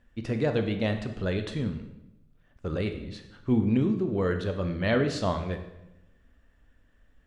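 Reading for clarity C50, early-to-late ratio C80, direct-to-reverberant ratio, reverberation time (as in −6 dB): 9.0 dB, 11.5 dB, 6.5 dB, 0.90 s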